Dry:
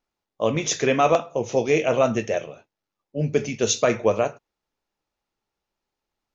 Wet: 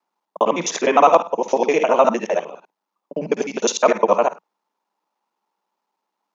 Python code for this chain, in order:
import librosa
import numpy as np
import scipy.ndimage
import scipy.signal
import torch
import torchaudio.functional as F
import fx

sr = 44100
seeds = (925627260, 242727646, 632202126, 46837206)

y = fx.local_reverse(x, sr, ms=51.0)
y = scipy.signal.sosfilt(scipy.signal.ellip(4, 1.0, 40, 180.0, 'highpass', fs=sr, output='sos'), y)
y = fx.peak_eq(y, sr, hz=950.0, db=14.0, octaves=0.71)
y = y * librosa.db_to_amplitude(1.5)